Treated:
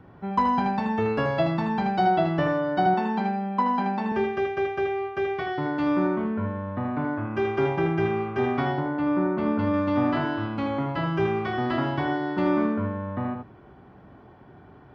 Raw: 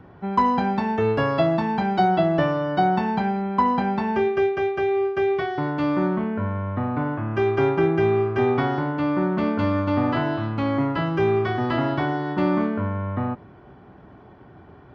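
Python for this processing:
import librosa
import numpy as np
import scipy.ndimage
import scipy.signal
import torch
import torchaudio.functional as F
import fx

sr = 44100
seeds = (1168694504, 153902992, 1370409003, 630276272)

y = fx.ellip_highpass(x, sr, hz=190.0, order=4, stop_db=40, at=(2.86, 4.12))
y = fx.high_shelf(y, sr, hz=3100.0, db=-10.0, at=(8.72, 9.74))
y = y + 10.0 ** (-5.5 / 20.0) * np.pad(y, (int(78 * sr / 1000.0), 0))[:len(y)]
y = y * 10.0 ** (-3.5 / 20.0)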